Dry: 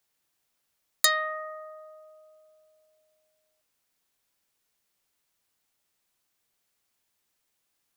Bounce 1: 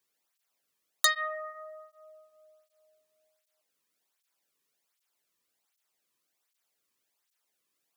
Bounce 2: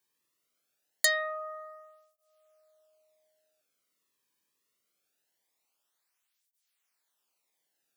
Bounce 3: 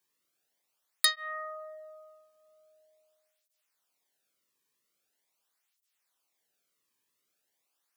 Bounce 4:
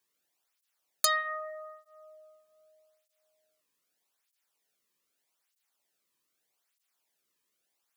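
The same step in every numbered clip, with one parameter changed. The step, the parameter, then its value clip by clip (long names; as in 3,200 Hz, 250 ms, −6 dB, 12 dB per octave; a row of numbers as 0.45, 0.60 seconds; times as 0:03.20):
through-zero flanger with one copy inverted, nulls at: 1.3, 0.23, 0.43, 0.81 Hertz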